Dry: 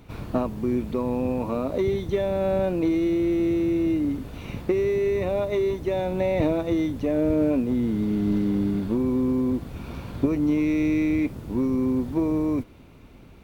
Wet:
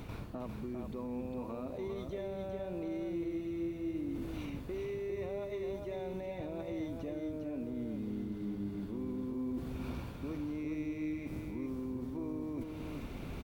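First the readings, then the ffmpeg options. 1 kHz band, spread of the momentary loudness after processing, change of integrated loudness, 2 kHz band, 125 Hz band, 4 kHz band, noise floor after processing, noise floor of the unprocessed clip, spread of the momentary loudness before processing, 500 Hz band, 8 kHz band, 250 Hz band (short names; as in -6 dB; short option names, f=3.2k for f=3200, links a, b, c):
-14.5 dB, 4 LU, -15.5 dB, -14.0 dB, -13.5 dB, -12.5 dB, -44 dBFS, -48 dBFS, 5 LU, -15.5 dB, n/a, -15.0 dB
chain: -af "areverse,acompressor=threshold=-36dB:ratio=10,areverse,alimiter=level_in=14.5dB:limit=-24dB:level=0:latency=1:release=276,volume=-14.5dB,aecho=1:1:403:0.562,volume=5.5dB"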